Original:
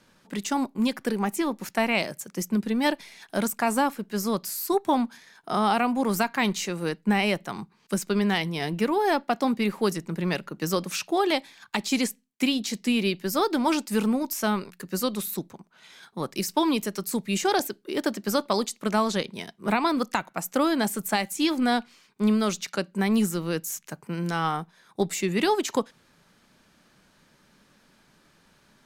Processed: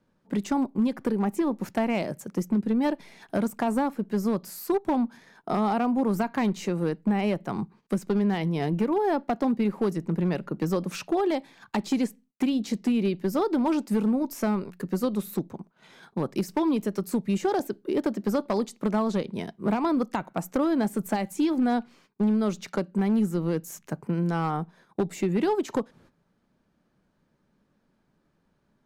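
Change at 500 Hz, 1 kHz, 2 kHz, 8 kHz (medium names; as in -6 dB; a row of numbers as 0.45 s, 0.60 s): -0.5 dB, -3.5 dB, -8.0 dB, -10.0 dB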